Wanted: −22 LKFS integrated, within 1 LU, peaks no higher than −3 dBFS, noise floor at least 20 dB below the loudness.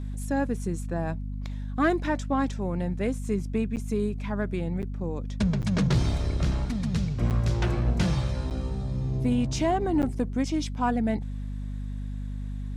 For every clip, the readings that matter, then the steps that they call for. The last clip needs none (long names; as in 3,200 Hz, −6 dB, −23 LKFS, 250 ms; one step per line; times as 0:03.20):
number of dropouts 6; longest dropout 8.7 ms; mains hum 50 Hz; hum harmonics up to 250 Hz; level of the hum −30 dBFS; integrated loudness −28.5 LKFS; sample peak −13.0 dBFS; target loudness −22.0 LKFS
→ repair the gap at 0:03.76/0:04.82/0:05.62/0:07.30/0:08.50/0:10.02, 8.7 ms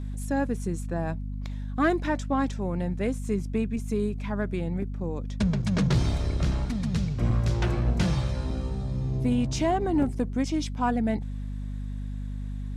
number of dropouts 0; mains hum 50 Hz; hum harmonics up to 250 Hz; level of the hum −30 dBFS
→ mains-hum notches 50/100/150/200/250 Hz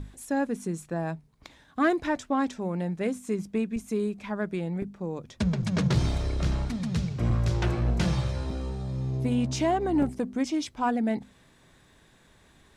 mains hum none found; integrated loudness −29.0 LKFS; sample peak −13.0 dBFS; target loudness −22.0 LKFS
→ level +7 dB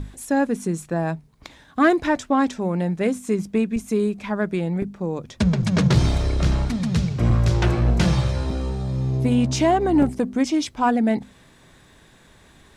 integrated loudness −22.0 LKFS; sample peak −6.0 dBFS; background noise floor −53 dBFS